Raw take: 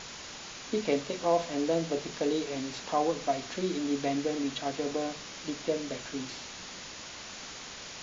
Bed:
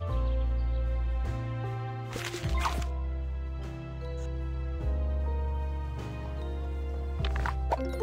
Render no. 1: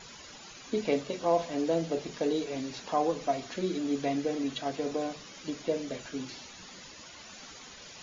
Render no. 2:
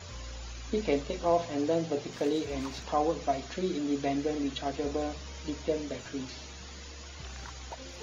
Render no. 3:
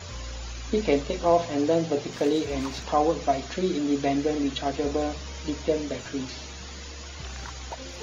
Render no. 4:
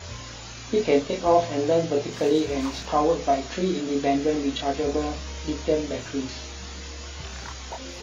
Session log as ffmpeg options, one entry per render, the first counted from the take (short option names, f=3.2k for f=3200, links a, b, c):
-af "afftdn=nr=11:nf=-44"
-filter_complex "[1:a]volume=-14.5dB[a];[0:a][a]amix=inputs=2:normalize=0"
-af "volume=5.5dB"
-filter_complex "[0:a]asplit=2[a][b];[b]adelay=26,volume=-3dB[c];[a][c]amix=inputs=2:normalize=0"